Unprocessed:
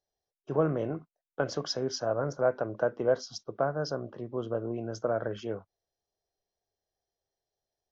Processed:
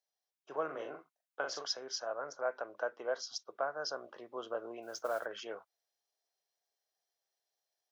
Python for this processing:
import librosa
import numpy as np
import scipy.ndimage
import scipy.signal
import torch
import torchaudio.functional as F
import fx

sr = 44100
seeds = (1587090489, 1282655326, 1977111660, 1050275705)

y = scipy.signal.sosfilt(scipy.signal.bessel(2, 1000.0, 'highpass', norm='mag', fs=sr, output='sos'), x)
y = fx.rider(y, sr, range_db=3, speed_s=0.5)
y = fx.doubler(y, sr, ms=42.0, db=-5, at=(0.69, 1.67), fade=0.02)
y = fx.mod_noise(y, sr, seeds[0], snr_db=23, at=(4.82, 5.26))